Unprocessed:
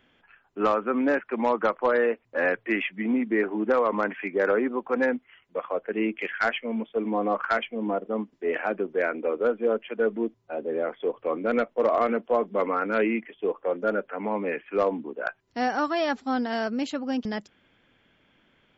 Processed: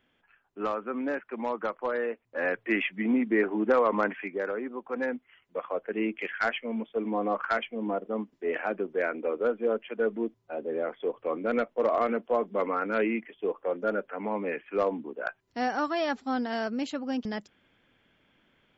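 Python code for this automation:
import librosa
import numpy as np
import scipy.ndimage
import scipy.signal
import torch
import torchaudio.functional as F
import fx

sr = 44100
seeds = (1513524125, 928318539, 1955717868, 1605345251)

y = fx.gain(x, sr, db=fx.line((2.23, -7.5), (2.77, -0.5), (4.07, -0.5), (4.53, -10.0), (5.6, -3.0)))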